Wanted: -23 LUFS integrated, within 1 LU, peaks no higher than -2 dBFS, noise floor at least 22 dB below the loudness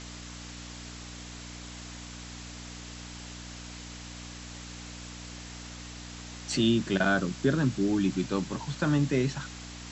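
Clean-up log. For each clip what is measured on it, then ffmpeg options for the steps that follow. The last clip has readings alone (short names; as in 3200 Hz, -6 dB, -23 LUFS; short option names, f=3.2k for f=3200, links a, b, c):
hum 60 Hz; harmonics up to 300 Hz; hum level -42 dBFS; noise floor -43 dBFS; noise floor target -54 dBFS; loudness -31.5 LUFS; peak -13.0 dBFS; loudness target -23.0 LUFS
-> -af "bandreject=f=60:t=h:w=4,bandreject=f=120:t=h:w=4,bandreject=f=180:t=h:w=4,bandreject=f=240:t=h:w=4,bandreject=f=300:t=h:w=4"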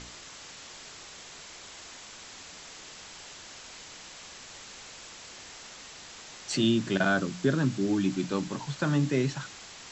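hum none; noise floor -47 dBFS; noise floor target -51 dBFS
-> -af "afftdn=nr=6:nf=-47"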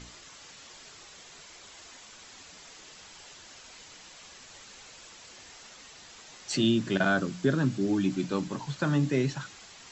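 noise floor -51 dBFS; loudness -28.0 LUFS; peak -13.0 dBFS; loudness target -23.0 LUFS
-> -af "volume=5dB"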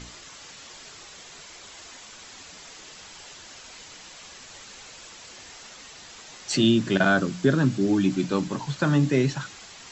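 loudness -23.0 LUFS; peak -8.0 dBFS; noise floor -46 dBFS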